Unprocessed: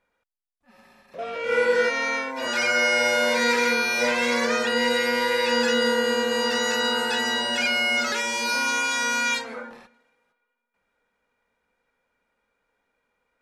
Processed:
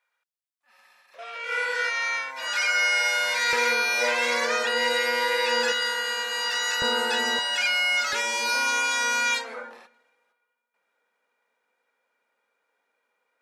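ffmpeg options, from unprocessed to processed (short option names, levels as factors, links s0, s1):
-af "asetnsamples=n=441:p=0,asendcmd='3.53 highpass f 500;5.72 highpass f 1100;6.82 highpass f 280;7.39 highpass f 910;8.13 highpass f 410',highpass=1100"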